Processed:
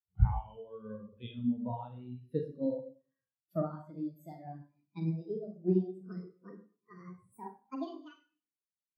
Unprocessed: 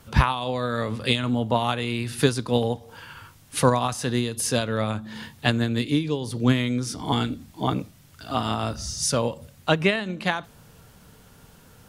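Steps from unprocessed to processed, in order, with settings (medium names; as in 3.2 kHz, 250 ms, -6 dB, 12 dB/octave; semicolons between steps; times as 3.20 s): gliding tape speed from 82% -> 183%; Schroeder reverb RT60 0.97 s, combs from 33 ms, DRR 0.5 dB; spectral contrast expander 2.5:1; trim -8 dB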